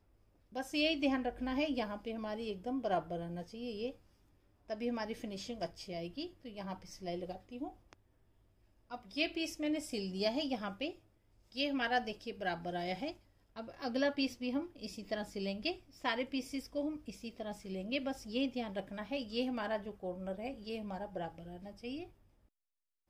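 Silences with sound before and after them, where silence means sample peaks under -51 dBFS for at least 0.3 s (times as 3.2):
3.96–4.69
7.93–8.9
10.95–11.52
13.16–13.56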